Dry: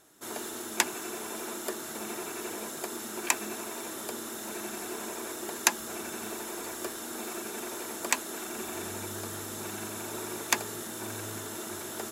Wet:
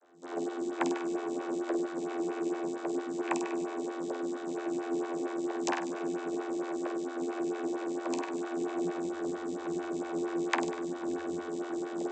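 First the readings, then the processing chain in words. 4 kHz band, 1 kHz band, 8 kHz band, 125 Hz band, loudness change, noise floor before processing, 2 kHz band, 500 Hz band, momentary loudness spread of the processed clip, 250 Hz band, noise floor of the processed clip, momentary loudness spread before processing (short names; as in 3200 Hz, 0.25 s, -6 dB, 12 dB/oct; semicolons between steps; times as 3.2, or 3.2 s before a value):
-10.5 dB, +0.5 dB, -15.5 dB, -3.5 dB, 0.0 dB, -40 dBFS, -5.0 dB, +6.0 dB, 4 LU, +8.0 dB, -40 dBFS, 7 LU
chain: vocoder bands 32, saw 86.4 Hz; flutter echo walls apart 8.4 m, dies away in 0.7 s; photocell phaser 4.4 Hz; gain +3 dB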